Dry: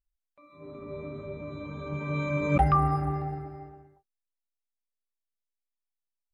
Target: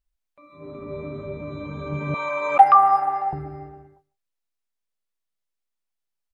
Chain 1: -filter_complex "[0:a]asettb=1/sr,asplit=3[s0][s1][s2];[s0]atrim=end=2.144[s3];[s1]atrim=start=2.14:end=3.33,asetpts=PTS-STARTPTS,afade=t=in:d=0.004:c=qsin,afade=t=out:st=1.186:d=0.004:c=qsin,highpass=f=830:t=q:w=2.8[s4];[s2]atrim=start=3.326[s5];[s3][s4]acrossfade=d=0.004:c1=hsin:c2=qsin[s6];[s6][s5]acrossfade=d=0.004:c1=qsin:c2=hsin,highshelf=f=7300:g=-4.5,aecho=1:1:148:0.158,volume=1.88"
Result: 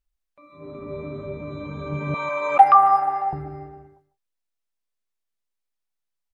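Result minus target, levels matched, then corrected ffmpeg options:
echo-to-direct +7.5 dB
-filter_complex "[0:a]asettb=1/sr,asplit=3[s0][s1][s2];[s0]atrim=end=2.144[s3];[s1]atrim=start=2.14:end=3.33,asetpts=PTS-STARTPTS,afade=t=in:d=0.004:c=qsin,afade=t=out:st=1.186:d=0.004:c=qsin,highpass=f=830:t=q:w=2.8[s4];[s2]atrim=start=3.326[s5];[s3][s4]acrossfade=d=0.004:c1=hsin:c2=qsin[s6];[s6][s5]acrossfade=d=0.004:c1=qsin:c2=hsin,highshelf=f=7300:g=-4.5,aecho=1:1:148:0.0668,volume=1.88"

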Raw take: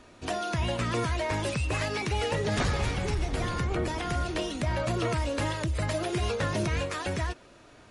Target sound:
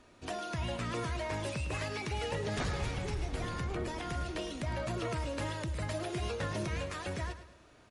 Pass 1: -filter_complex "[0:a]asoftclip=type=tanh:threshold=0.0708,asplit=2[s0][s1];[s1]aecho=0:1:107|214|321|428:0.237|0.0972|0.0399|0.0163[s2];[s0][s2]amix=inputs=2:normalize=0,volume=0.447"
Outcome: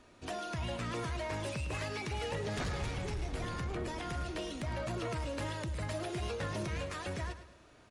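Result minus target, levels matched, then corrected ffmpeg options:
saturation: distortion +18 dB
-filter_complex "[0:a]asoftclip=type=tanh:threshold=0.237,asplit=2[s0][s1];[s1]aecho=0:1:107|214|321|428:0.237|0.0972|0.0399|0.0163[s2];[s0][s2]amix=inputs=2:normalize=0,volume=0.447"

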